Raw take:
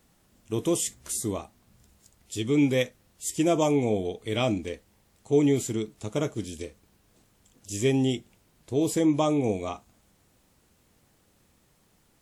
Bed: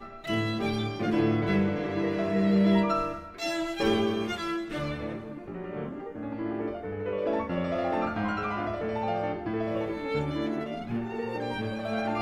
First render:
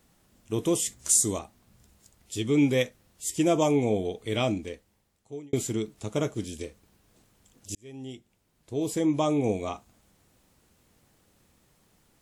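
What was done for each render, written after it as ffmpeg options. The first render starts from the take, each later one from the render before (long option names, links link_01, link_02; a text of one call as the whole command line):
ffmpeg -i in.wav -filter_complex "[0:a]asettb=1/sr,asplit=3[link_01][link_02][link_03];[link_01]atrim=end=0.994[link_04];[link_02]atrim=start=0.99:end=1.39,asetpts=PTS-STARTPTS,afade=type=in:duration=0.004:curve=qsin,afade=type=out:start_time=0.396:duration=0.004:curve=qsin,equalizer=frequency=7200:width_type=o:width=1.2:gain=12.5[link_05];[link_03]atrim=start=1.386[link_06];[link_04][link_05]acrossfade=duration=0.004:curve1=hsin:curve2=qsin[link_07];[link_07][link_06]acrossfade=duration=0.004:curve1=qsin:curve2=hsin,asplit=3[link_08][link_09][link_10];[link_08]atrim=end=5.53,asetpts=PTS-STARTPTS,afade=type=out:start_time=4.33:duration=1.2[link_11];[link_09]atrim=start=5.53:end=7.75,asetpts=PTS-STARTPTS,afade=type=in:duration=0.004:curve=hsin,afade=type=out:start_time=2.216:duration=0.004:curve=hsin[link_12];[link_10]atrim=start=7.75,asetpts=PTS-STARTPTS,afade=type=in:duration=1.73[link_13];[link_11][link_12][link_13]concat=n=3:v=0:a=1" out.wav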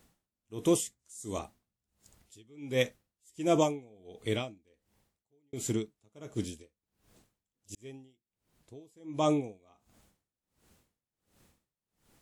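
ffmpeg -i in.wav -af "aeval=exprs='val(0)*pow(10,-32*(0.5-0.5*cos(2*PI*1.4*n/s))/20)':channel_layout=same" out.wav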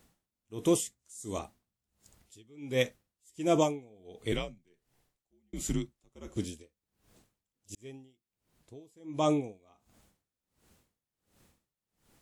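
ffmpeg -i in.wav -filter_complex "[0:a]asettb=1/sr,asplit=3[link_01][link_02][link_03];[link_01]atrim=end=4.324[link_04];[link_02]atrim=start=4.32:end=6.37,asetpts=PTS-STARTPTS,afade=type=in:duration=0.004:curve=qsin,afade=type=out:start_time=2.046:duration=0.004:curve=qsin,afreqshift=-77[link_05];[link_03]atrim=start=6.366[link_06];[link_04][link_05]acrossfade=duration=0.004:curve1=hsin:curve2=qsin[link_07];[link_07][link_06]acrossfade=duration=0.004:curve1=qsin:curve2=hsin" out.wav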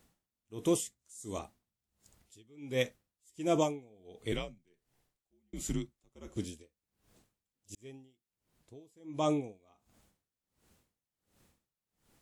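ffmpeg -i in.wav -af "volume=-3dB" out.wav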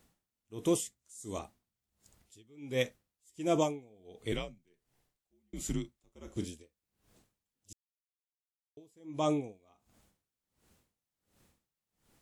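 ffmpeg -i in.wav -filter_complex "[0:a]asettb=1/sr,asplit=3[link_01][link_02][link_03];[link_01]atrim=end=5.814[link_04];[link_02]atrim=start=5.81:end=6.48,asetpts=PTS-STARTPTS,afade=type=in:duration=0.004:curve=qsin,afade=type=out:start_time=0.666:duration=0.004:curve=qsin,asplit=2[link_05][link_06];[link_06]adelay=32,volume=-11dB[link_07];[link_05][link_07]amix=inputs=2:normalize=0,atrim=end_sample=29547[link_08];[link_03]atrim=start=6.476[link_09];[link_04][link_08]acrossfade=duration=0.004:curve1=hsin:curve2=qsin[link_10];[link_10][link_09]acrossfade=duration=0.004:curve1=qsin:curve2=hsin,asplit=3[link_11][link_12][link_13];[link_11]atrim=end=7.73,asetpts=PTS-STARTPTS,afade=type=out:start_time=7.726:duration=0.004:curve=hsin[link_14];[link_12]atrim=start=7.73:end=8.77,asetpts=PTS-STARTPTS,volume=0[link_15];[link_13]atrim=start=8.77,asetpts=PTS-STARTPTS,afade=type=in:duration=0.004:curve=hsin[link_16];[link_14][link_15][link_16]concat=n=3:v=0:a=1" out.wav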